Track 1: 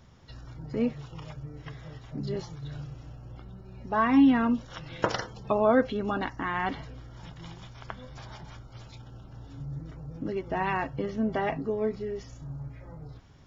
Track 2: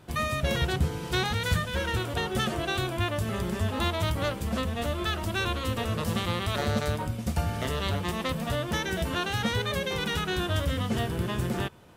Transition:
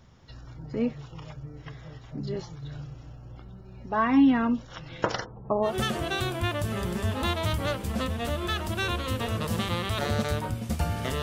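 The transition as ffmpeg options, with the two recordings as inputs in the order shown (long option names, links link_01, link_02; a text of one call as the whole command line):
ffmpeg -i cue0.wav -i cue1.wav -filter_complex "[0:a]asplit=3[link_01][link_02][link_03];[link_01]afade=type=out:start_time=5.24:duration=0.02[link_04];[link_02]lowpass=frequency=1200:width=0.5412,lowpass=frequency=1200:width=1.3066,afade=type=in:start_time=5.24:duration=0.02,afade=type=out:start_time=5.74:duration=0.02[link_05];[link_03]afade=type=in:start_time=5.74:duration=0.02[link_06];[link_04][link_05][link_06]amix=inputs=3:normalize=0,apad=whole_dur=11.22,atrim=end=11.22,atrim=end=5.74,asetpts=PTS-STARTPTS[link_07];[1:a]atrim=start=2.19:end=7.79,asetpts=PTS-STARTPTS[link_08];[link_07][link_08]acrossfade=duration=0.12:curve1=tri:curve2=tri" out.wav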